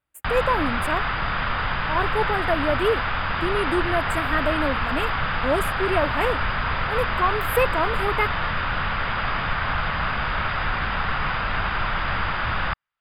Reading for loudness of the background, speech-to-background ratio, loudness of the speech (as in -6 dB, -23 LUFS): -25.0 LUFS, -1.0 dB, -26.0 LUFS